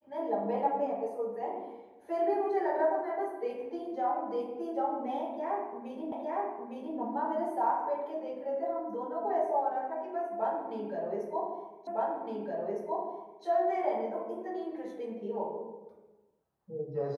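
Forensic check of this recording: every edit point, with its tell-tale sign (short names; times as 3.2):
6.12 repeat of the last 0.86 s
11.87 repeat of the last 1.56 s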